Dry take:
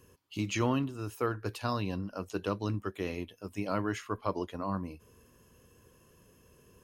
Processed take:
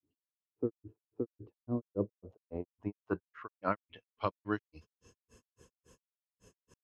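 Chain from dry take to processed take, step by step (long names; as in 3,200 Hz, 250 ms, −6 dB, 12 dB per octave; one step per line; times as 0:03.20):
granular cloud 152 ms, grains 3.6 per second, spray 901 ms, pitch spread up and down by 0 semitones
low-pass filter sweep 310 Hz → 7,500 Hz, 0:01.59–0:05.28
level +1 dB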